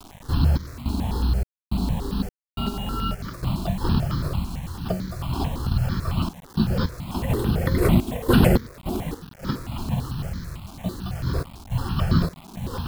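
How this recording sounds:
sample-and-hold tremolo, depth 100%
a quantiser's noise floor 8 bits, dither none
notches that jump at a steady rate 9 Hz 510–2,700 Hz

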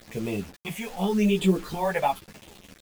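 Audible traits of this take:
phaser sweep stages 6, 0.89 Hz, lowest notch 320–1,600 Hz
a quantiser's noise floor 8 bits, dither none
a shimmering, thickened sound

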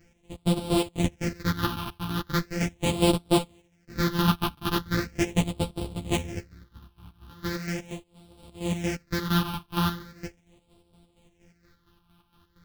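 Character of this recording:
a buzz of ramps at a fixed pitch in blocks of 256 samples
phaser sweep stages 6, 0.39 Hz, lowest notch 520–1,800 Hz
chopped level 4.3 Hz, depth 60%, duty 50%
a shimmering, thickened sound

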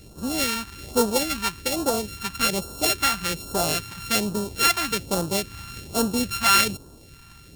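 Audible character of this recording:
a buzz of ramps at a fixed pitch in blocks of 32 samples
phaser sweep stages 2, 1.2 Hz, lowest notch 460–2,100 Hz

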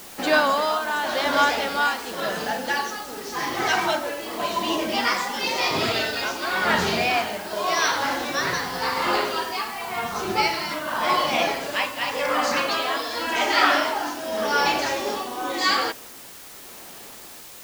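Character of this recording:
tremolo triangle 0.9 Hz, depth 65%
a quantiser's noise floor 8 bits, dither triangular

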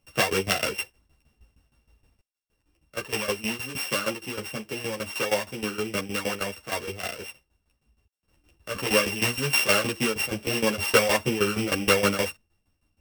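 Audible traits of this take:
a buzz of ramps at a fixed pitch in blocks of 16 samples
tremolo saw down 6.4 Hz, depth 85%
a shimmering, thickened sound

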